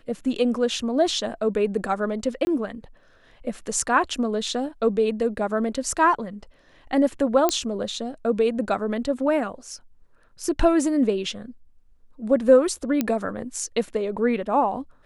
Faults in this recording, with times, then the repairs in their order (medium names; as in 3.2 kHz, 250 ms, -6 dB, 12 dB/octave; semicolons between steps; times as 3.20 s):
2.45–2.47 s: dropout 20 ms
7.49 s: pop -6 dBFS
13.01 s: pop -9 dBFS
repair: de-click; interpolate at 2.45 s, 20 ms